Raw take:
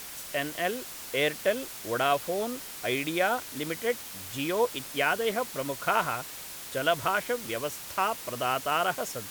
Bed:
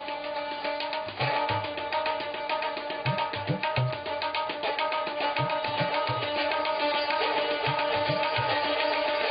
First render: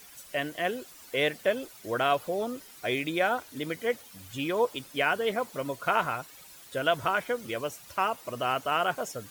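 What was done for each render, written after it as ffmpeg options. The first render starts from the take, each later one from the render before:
-af "afftdn=nr=12:nf=-42"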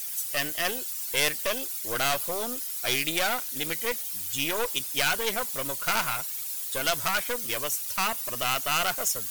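-af "aeval=exprs='(tanh(20*val(0)+0.7)-tanh(0.7))/20':c=same,crystalizer=i=7.5:c=0"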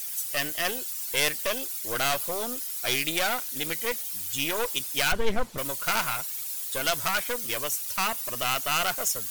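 -filter_complex "[0:a]asettb=1/sr,asplit=3[s0][s1][s2];[s0]atrim=end=5.124[s3];[s1]atrim=start=5.12:end=5.58,asetpts=PTS-STARTPTS,afade=t=in:d=0.004:c=qsin,afade=t=out:st=0.456:d=0.004:c=qsin,aemphasis=mode=reproduction:type=riaa[s4];[s2]atrim=start=5.576[s5];[s3][s4]acrossfade=d=0.004:c1=hsin:c2=qsin[s6];[s6][s5]acrossfade=d=0.004:c1=qsin:c2=hsin"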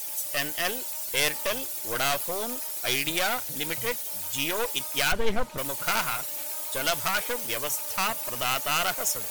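-filter_complex "[1:a]volume=0.119[s0];[0:a][s0]amix=inputs=2:normalize=0"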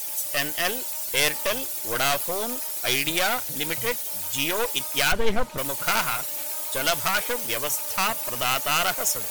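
-af "volume=1.41"

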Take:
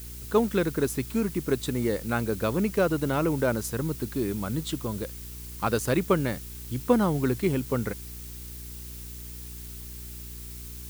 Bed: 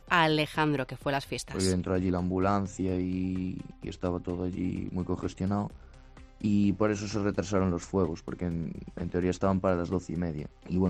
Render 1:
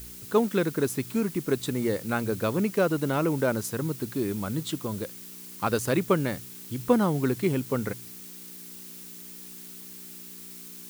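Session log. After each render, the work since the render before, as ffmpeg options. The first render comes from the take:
-af "bandreject=f=60:t=h:w=4,bandreject=f=120:t=h:w=4"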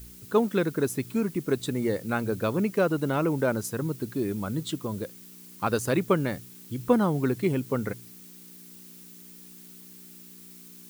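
-af "afftdn=nr=6:nf=-44"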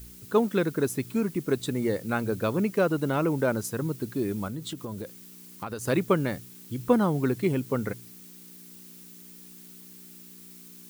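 -filter_complex "[0:a]asettb=1/sr,asplit=3[s0][s1][s2];[s0]atrim=end=4.474[s3];[s1]atrim=start=4.47:end=5.87,asetpts=PTS-STARTPTS,afade=t=in:d=0.004:c=qsin,afade=t=out:st=1.396:d=0.004:c=qsin,acompressor=threshold=0.0282:ratio=5:attack=3.2:release=140:knee=1:detection=peak[s4];[s2]atrim=start=5.866[s5];[s3][s4]acrossfade=d=0.004:c1=hsin:c2=qsin[s6];[s6][s5]acrossfade=d=0.004:c1=qsin:c2=hsin"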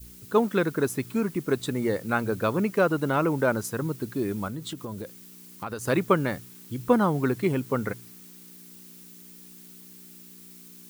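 -af "adynamicequalizer=threshold=0.0126:dfrequency=1200:dqfactor=0.83:tfrequency=1200:tqfactor=0.83:attack=5:release=100:ratio=0.375:range=2.5:mode=boostabove:tftype=bell"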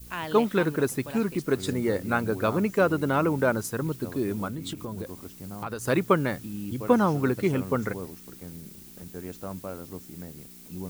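-filter_complex "[1:a]volume=0.299[s0];[0:a][s0]amix=inputs=2:normalize=0"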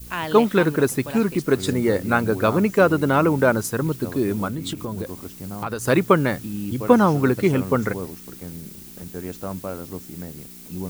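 -af "volume=2,alimiter=limit=0.794:level=0:latency=1"

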